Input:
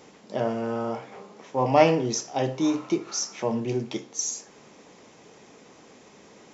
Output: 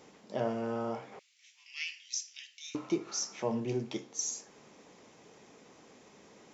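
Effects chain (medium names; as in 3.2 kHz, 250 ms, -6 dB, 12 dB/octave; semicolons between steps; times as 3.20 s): 1.19–2.75 s: steep high-pass 2.2 kHz 36 dB/octave; trim -6 dB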